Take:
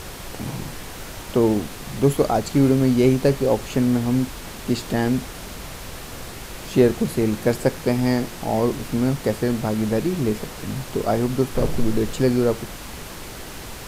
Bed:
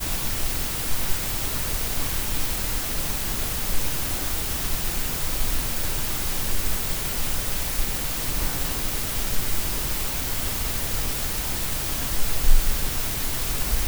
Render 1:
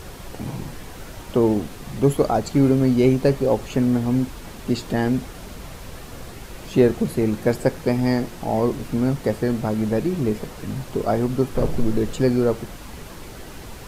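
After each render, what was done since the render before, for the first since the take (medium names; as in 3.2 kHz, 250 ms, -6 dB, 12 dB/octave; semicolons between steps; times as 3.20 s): noise reduction 6 dB, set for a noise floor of -36 dBFS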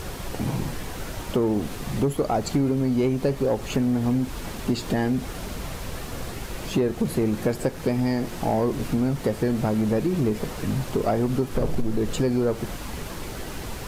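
compression 6:1, threshold -22 dBFS, peak gain reduction 11.5 dB; waveshaping leveller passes 1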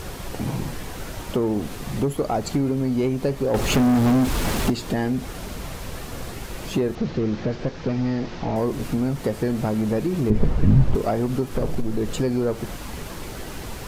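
3.54–4.70 s: waveshaping leveller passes 3; 6.95–8.56 s: one-bit delta coder 32 kbps, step -42 dBFS; 10.30–10.95 s: RIAA curve playback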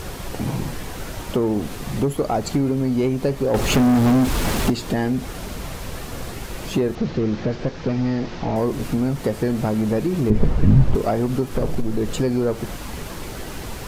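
trim +2 dB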